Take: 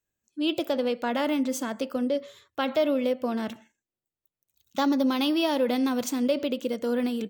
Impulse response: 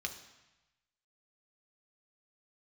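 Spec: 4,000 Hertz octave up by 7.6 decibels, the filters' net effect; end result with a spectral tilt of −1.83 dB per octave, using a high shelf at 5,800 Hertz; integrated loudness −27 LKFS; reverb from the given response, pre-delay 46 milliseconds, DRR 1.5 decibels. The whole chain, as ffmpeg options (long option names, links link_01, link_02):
-filter_complex "[0:a]equalizer=frequency=4000:width_type=o:gain=7,highshelf=frequency=5800:gain=9,asplit=2[link_01][link_02];[1:a]atrim=start_sample=2205,adelay=46[link_03];[link_02][link_03]afir=irnorm=-1:irlink=0,volume=-2.5dB[link_04];[link_01][link_04]amix=inputs=2:normalize=0,volume=-3dB"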